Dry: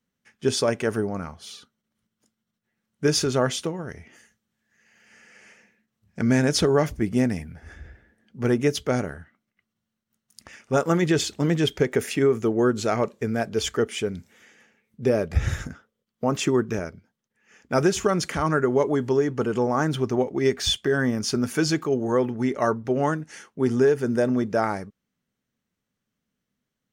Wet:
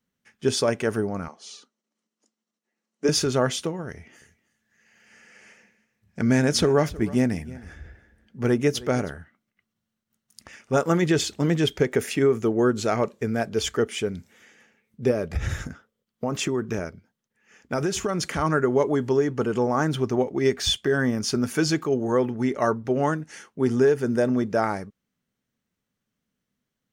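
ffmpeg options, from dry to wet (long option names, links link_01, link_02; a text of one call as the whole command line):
ffmpeg -i in.wav -filter_complex "[0:a]asettb=1/sr,asplit=3[link_01][link_02][link_03];[link_01]atrim=end=1.284[link_04];[link_02]atrim=start=1.28:end=3.09,asetpts=PTS-STARTPTS,afade=type=in:duration=0.004:curve=qsin,afade=type=out:start_time=1.806:duration=0.004:curve=qsin,highpass=frequency=250:width=0.5412,highpass=frequency=250:width=1.3066,equalizer=frequency=1500:width_type=q:width=4:gain=-7,equalizer=frequency=2200:width_type=q:width=4:gain=-3,equalizer=frequency=3400:width_type=q:width=4:gain=-6,equalizer=frequency=6400:width_type=q:width=4:gain=3,lowpass=frequency=8400:width=0.5412,lowpass=frequency=8400:width=1.3066[link_05];[link_03]atrim=start=3.086[link_06];[link_04][link_05]acrossfade=duration=0.004:curve1=hsin:curve2=qsin[link_07];[link_07][link_06]acrossfade=duration=0.004:curve1=qsin:curve2=hsin,asettb=1/sr,asplit=3[link_08][link_09][link_10];[link_08]atrim=end=3.904[link_11];[link_09]atrim=start=3.9:end=9.13,asetpts=PTS-STARTPTS,afade=type=in:duration=0.004:curve=qsin,afade=type=out:start_time=5.226:duration=0.004:curve=qsin,aecho=1:1:316:0.106,atrim=end_sample=230643[link_12];[link_10]atrim=start=9.126[link_13];[link_11][link_12]acrossfade=duration=0.004:curve1=hsin:curve2=qsin[link_14];[link_14][link_13]acrossfade=duration=0.004:curve1=qsin:curve2=hsin,asettb=1/sr,asplit=3[link_15][link_16][link_17];[link_15]atrim=end=15.114[link_18];[link_16]atrim=start=15.11:end=18.38,asetpts=PTS-STARTPTS,afade=type=in:duration=0.004:curve=qsin,afade=type=out:start_time=3.266:duration=0.004:curve=qsin,acompressor=threshold=-21dB:ratio=4:attack=3.2:release=140:knee=1:detection=peak[link_19];[link_17]atrim=start=18.376[link_20];[link_18][link_19]acrossfade=duration=0.004:curve1=hsin:curve2=qsin[link_21];[link_21][link_20]acrossfade=duration=0.004:curve1=qsin:curve2=hsin" out.wav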